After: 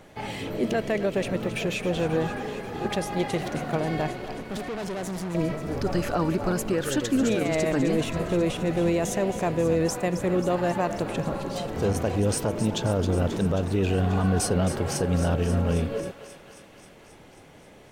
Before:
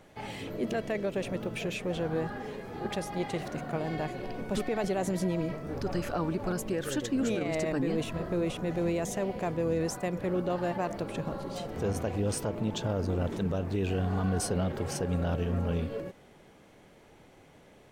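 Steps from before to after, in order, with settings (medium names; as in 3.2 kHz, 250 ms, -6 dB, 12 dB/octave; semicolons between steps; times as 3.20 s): 4.13–5.35 s: valve stage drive 35 dB, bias 0.65; thinning echo 268 ms, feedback 74%, high-pass 820 Hz, level -10.5 dB; trim +6 dB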